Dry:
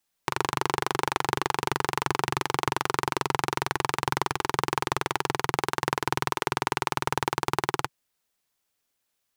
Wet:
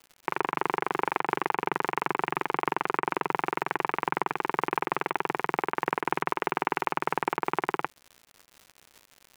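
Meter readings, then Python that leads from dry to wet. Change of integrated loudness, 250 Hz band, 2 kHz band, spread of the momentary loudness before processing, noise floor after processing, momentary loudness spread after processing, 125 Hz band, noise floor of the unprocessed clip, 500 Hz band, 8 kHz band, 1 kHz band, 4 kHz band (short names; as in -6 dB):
-1.5 dB, -1.0 dB, -1.0 dB, 1 LU, -64 dBFS, 1 LU, -9.5 dB, -78 dBFS, -0.5 dB, under -15 dB, -0.5 dB, -11.0 dB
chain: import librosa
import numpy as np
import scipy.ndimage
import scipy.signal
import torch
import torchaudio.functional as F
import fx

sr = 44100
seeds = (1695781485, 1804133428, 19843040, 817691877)

y = scipy.signal.sosfilt(scipy.signal.ellip(3, 1.0, 40, [180.0, 2500.0], 'bandpass', fs=sr, output='sos'), x)
y = fx.dmg_crackle(y, sr, seeds[0], per_s=170.0, level_db=-38.0)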